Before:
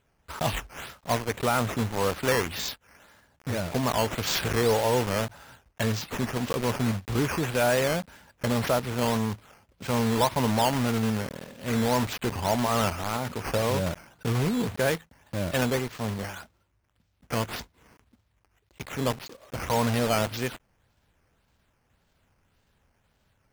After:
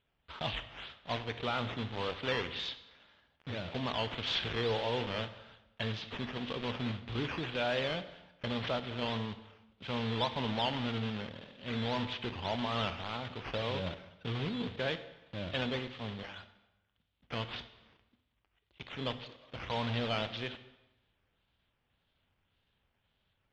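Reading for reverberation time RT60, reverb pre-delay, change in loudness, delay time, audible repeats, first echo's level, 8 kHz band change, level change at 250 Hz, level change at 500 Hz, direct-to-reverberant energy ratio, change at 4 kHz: 0.95 s, 25 ms, -9.0 dB, no echo, no echo, no echo, -25.0 dB, -10.0 dB, -10.0 dB, 11.5 dB, -3.0 dB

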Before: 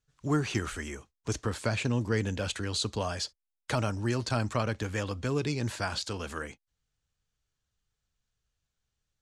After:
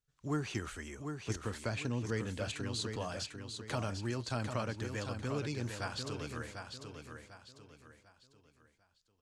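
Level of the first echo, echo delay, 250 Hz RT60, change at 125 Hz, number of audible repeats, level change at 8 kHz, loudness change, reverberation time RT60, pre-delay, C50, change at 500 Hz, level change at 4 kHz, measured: -6.5 dB, 747 ms, no reverb, -6.5 dB, 4, -6.5 dB, -7.0 dB, no reverb, no reverb, no reverb, -6.5 dB, -6.5 dB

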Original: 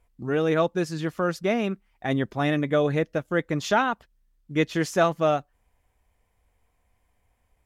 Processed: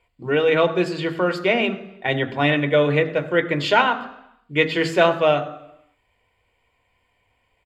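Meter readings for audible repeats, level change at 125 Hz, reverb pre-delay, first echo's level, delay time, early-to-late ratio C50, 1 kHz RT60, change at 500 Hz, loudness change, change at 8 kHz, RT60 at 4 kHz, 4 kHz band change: 1, +2.5 dB, 3 ms, -21.5 dB, 99 ms, 15.0 dB, 0.80 s, +5.5 dB, +5.0 dB, no reading, 0.90 s, +9.5 dB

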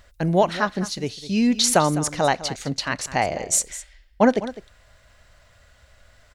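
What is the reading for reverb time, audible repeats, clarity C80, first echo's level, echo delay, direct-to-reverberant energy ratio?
no reverb, 1, no reverb, -15.0 dB, 205 ms, no reverb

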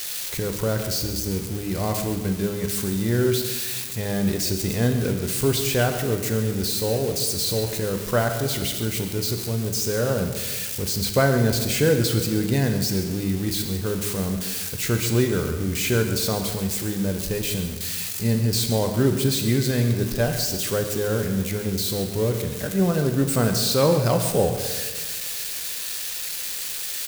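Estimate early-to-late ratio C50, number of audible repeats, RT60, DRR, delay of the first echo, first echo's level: 6.5 dB, 1, 1.5 s, 4.5 dB, 135 ms, -13.0 dB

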